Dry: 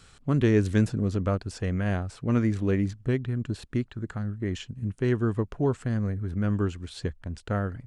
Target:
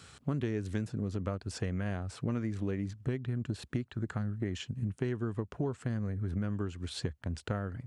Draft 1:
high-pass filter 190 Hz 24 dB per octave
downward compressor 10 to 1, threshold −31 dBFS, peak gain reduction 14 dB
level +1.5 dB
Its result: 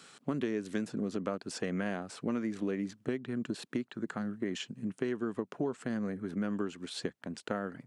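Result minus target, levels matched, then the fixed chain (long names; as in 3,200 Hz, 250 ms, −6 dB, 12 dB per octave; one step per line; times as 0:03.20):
125 Hz band −9.5 dB
high-pass filter 67 Hz 24 dB per octave
downward compressor 10 to 1, threshold −31 dBFS, peak gain reduction 15.5 dB
level +1.5 dB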